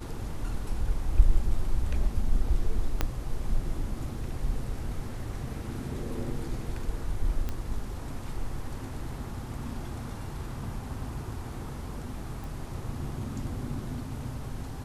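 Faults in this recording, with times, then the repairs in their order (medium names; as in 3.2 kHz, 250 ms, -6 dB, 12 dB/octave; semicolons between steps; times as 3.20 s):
3.01 s: pop -11 dBFS
7.49 s: pop -19 dBFS
12.44 s: pop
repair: de-click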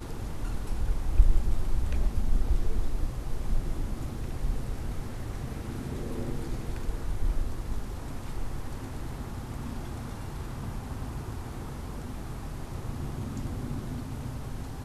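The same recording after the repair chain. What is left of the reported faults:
3.01 s: pop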